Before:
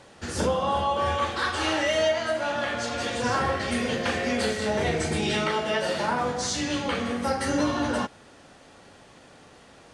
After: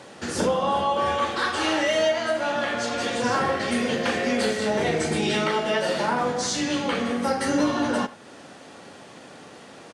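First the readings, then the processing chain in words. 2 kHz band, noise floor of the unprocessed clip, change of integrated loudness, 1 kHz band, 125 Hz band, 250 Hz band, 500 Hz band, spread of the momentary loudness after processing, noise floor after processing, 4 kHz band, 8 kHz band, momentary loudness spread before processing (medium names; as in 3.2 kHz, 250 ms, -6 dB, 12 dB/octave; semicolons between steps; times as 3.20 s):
+1.5 dB, -52 dBFS, +2.0 dB, +2.0 dB, -1.5 dB, +3.0 dB, +2.5 dB, 3 LU, -46 dBFS, +1.5 dB, +1.5 dB, 4 LU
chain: high-pass 180 Hz 12 dB/octave; bass shelf 290 Hz +5 dB; in parallel at 0 dB: compression, threshold -39 dBFS, peak gain reduction 18.5 dB; on the sum: overload inside the chain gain 14 dB; speakerphone echo 80 ms, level -16 dB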